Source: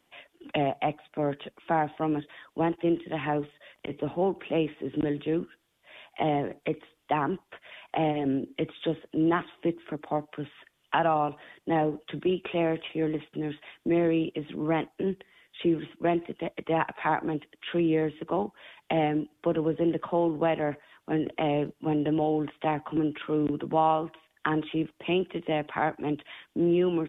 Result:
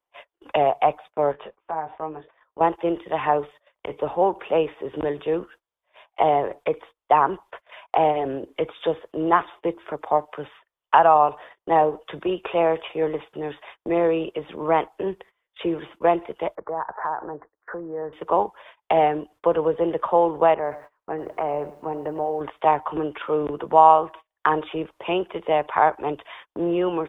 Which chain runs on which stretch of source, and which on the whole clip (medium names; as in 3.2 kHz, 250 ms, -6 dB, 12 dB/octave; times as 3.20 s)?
1.32–2.61 s: distance through air 380 m + compression 2.5:1, threshold -40 dBFS + doubling 19 ms -6 dB
16.55–18.13 s: steep low-pass 1.8 kHz 72 dB/octave + compression 4:1, threshold -34 dBFS
20.54–22.41 s: low-pass 2.2 kHz 24 dB/octave + compression 2:1, threshold -33 dBFS + bit-crushed delay 102 ms, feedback 35%, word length 9-bit, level -14.5 dB
whole clip: bass shelf 160 Hz +5.5 dB; gate -47 dBFS, range -23 dB; ten-band graphic EQ 125 Hz -6 dB, 250 Hz -10 dB, 500 Hz +7 dB, 1 kHz +11 dB; trim +1 dB